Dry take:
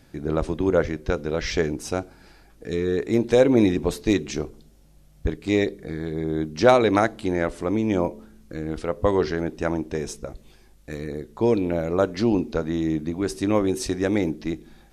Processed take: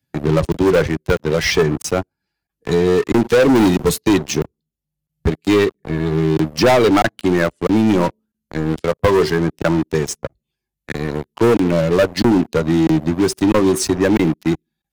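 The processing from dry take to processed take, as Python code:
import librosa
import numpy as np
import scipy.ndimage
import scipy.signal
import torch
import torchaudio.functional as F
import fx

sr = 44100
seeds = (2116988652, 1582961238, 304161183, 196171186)

y = fx.bin_expand(x, sr, power=1.5)
y = scipy.signal.sosfilt(scipy.signal.butter(4, 64.0, 'highpass', fs=sr, output='sos'), y)
y = fx.leveller(y, sr, passes=5)
y = fx.high_shelf(y, sr, hz=5300.0, db=8.0, at=(3.55, 4.09))
y = fx.buffer_crackle(y, sr, first_s=0.52, period_s=0.65, block=1024, kind='zero')
y = fx.band_squash(y, sr, depth_pct=40)
y = y * librosa.db_to_amplitude(-2.5)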